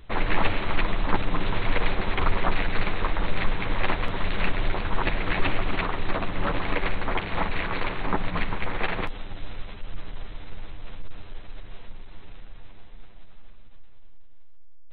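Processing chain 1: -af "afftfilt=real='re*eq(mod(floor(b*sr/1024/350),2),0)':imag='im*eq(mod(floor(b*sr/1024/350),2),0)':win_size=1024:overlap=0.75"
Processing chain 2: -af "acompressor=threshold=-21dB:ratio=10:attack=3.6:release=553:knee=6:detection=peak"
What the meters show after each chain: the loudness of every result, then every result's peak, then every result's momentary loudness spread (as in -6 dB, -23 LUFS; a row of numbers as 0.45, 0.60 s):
-31.0, -34.5 LUFS; -7.5, -15.5 dBFS; 18, 15 LU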